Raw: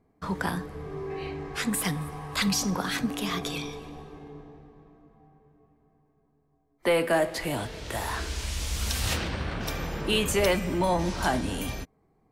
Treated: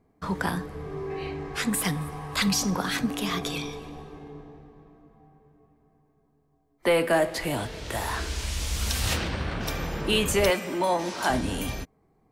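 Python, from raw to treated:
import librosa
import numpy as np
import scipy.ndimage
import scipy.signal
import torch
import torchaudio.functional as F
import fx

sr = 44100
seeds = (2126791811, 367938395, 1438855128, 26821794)

y = fx.highpass(x, sr, hz=300.0, slope=12, at=(10.5, 11.3))
y = y * librosa.db_to_amplitude(1.5)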